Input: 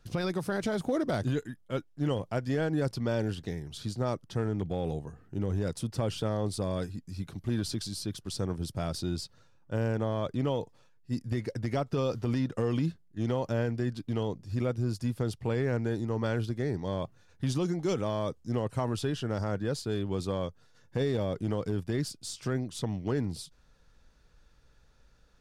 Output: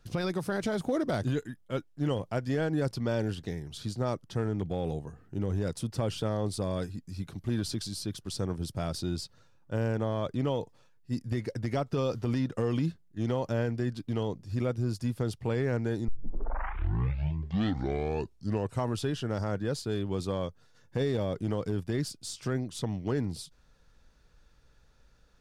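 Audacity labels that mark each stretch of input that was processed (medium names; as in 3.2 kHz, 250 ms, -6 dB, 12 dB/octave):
16.080000	16.080000	tape start 2.77 s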